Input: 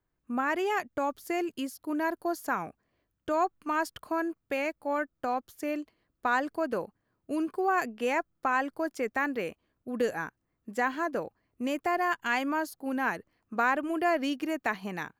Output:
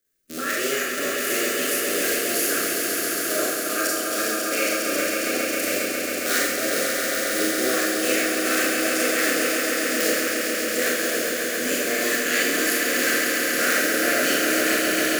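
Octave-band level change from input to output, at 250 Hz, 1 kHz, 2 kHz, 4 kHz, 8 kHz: +6.0, -0.5, +11.0, +20.0, +27.0 dB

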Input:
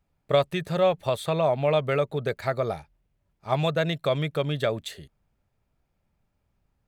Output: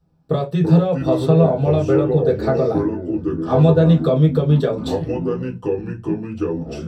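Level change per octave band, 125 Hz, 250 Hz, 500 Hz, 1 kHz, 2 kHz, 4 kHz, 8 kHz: +14.0 dB, +16.5 dB, +7.5 dB, +3.0 dB, -1.5 dB, -2.5 dB, n/a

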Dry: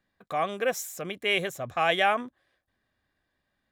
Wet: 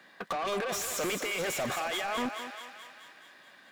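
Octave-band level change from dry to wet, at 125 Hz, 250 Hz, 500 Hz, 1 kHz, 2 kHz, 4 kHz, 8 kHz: -4.0, 0.0, -4.5, -6.0, -5.5, -4.0, +4.0 dB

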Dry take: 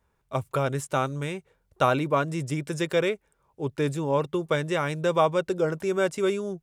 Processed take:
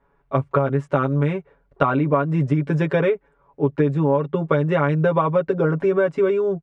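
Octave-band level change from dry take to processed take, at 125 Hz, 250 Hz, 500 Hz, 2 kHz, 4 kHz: +9.5, +8.0, +6.0, +2.5, -6.5 dB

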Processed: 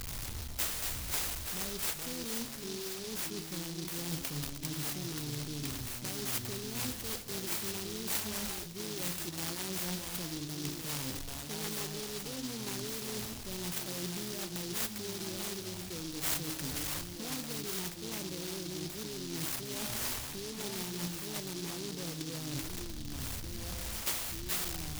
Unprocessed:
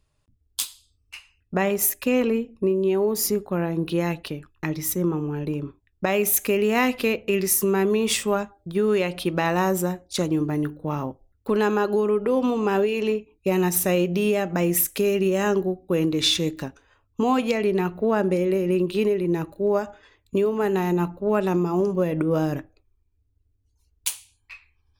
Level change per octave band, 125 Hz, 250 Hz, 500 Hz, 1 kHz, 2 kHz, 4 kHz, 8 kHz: -12.0, -17.0, -22.0, -17.5, -12.0, -6.5, -6.5 dB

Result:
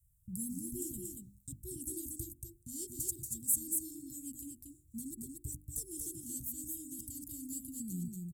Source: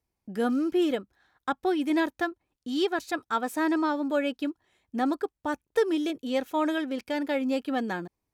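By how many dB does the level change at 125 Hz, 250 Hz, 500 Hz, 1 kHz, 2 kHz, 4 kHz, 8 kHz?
n/a, -17.0 dB, -26.0 dB, under -40 dB, under -40 dB, -22.0 dB, +13.5 dB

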